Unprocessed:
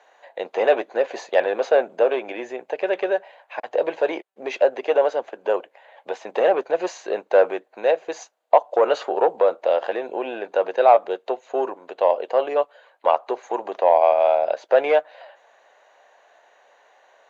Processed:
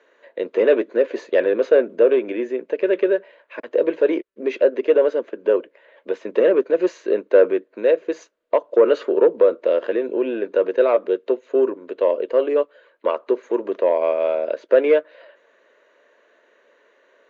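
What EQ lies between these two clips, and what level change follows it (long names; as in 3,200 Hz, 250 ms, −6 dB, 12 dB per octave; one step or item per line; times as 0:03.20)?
low-pass filter 1,300 Hz 6 dB per octave
low-shelf EQ 280 Hz +10 dB
phaser with its sweep stopped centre 320 Hz, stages 4
+6.0 dB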